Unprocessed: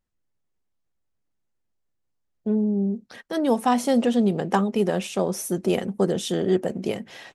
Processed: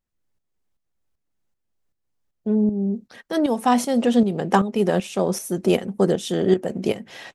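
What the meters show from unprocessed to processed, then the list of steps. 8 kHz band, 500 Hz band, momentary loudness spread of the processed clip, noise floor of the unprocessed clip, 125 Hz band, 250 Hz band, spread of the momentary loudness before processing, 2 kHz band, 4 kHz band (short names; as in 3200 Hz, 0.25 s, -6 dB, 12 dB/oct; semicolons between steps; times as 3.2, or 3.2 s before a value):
+1.0 dB, +2.5 dB, 8 LU, -75 dBFS, +2.0 dB, +2.0 dB, 9 LU, +3.0 dB, +1.5 dB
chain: tremolo saw up 2.6 Hz, depth 65%; gain +5 dB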